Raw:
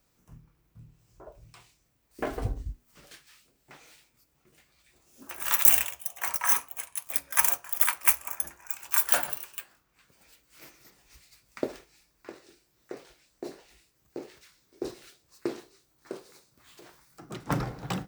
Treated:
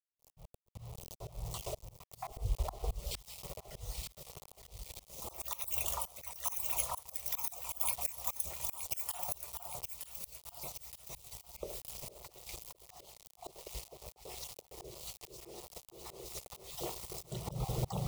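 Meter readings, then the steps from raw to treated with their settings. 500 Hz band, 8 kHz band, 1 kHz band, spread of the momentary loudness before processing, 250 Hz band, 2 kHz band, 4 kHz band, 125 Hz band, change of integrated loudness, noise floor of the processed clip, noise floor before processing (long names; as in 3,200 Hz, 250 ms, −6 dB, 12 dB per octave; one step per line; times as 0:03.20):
−7.0 dB, −9.0 dB, −7.5 dB, 23 LU, −11.0 dB, −17.0 dB, −5.5 dB, can't be measured, −14.0 dB, −71 dBFS, −71 dBFS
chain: time-frequency cells dropped at random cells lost 38%
low-shelf EQ 250 Hz +7.5 dB
in parallel at +1 dB: brickwall limiter −13.5 dBFS, peak gain reduction 10.5 dB
on the sum: downward compressor 2 to 1, threshold −41 dBFS, peak gain reduction 16 dB
on a send: delay that swaps between a low-pass and a high-pass 460 ms, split 1,500 Hz, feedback 69%, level −4 dB
on the sum: mains hum 60 Hz, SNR 22 dB
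bit reduction 8 bits
phaser with its sweep stopped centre 660 Hz, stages 4
volume swells 266 ms
level +7.5 dB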